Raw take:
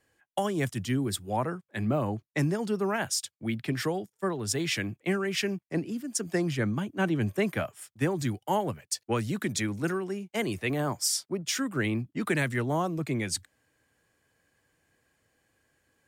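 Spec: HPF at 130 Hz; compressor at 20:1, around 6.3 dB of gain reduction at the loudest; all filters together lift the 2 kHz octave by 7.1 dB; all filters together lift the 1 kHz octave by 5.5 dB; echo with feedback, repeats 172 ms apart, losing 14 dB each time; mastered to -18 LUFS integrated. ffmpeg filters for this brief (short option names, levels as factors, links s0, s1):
-af "highpass=130,equalizer=f=1000:t=o:g=5.5,equalizer=f=2000:t=o:g=7,acompressor=threshold=0.0562:ratio=20,aecho=1:1:172|344:0.2|0.0399,volume=4.47"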